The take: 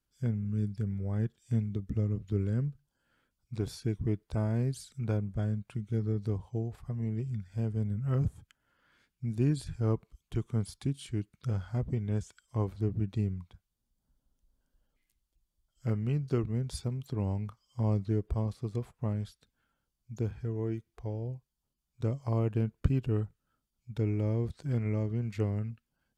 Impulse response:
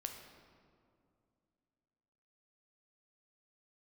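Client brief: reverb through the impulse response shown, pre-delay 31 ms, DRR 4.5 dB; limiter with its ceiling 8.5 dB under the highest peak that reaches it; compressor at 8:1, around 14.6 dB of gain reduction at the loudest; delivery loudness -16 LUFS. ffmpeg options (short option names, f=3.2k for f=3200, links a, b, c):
-filter_complex "[0:a]acompressor=threshold=-36dB:ratio=8,alimiter=level_in=11.5dB:limit=-24dB:level=0:latency=1,volume=-11.5dB,asplit=2[a][b];[1:a]atrim=start_sample=2205,adelay=31[c];[b][c]afir=irnorm=-1:irlink=0,volume=-2.5dB[d];[a][d]amix=inputs=2:normalize=0,volume=27.5dB"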